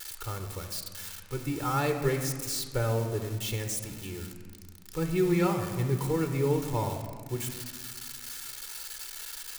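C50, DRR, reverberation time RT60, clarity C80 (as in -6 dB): 7.5 dB, 6.0 dB, 1.8 s, 9.0 dB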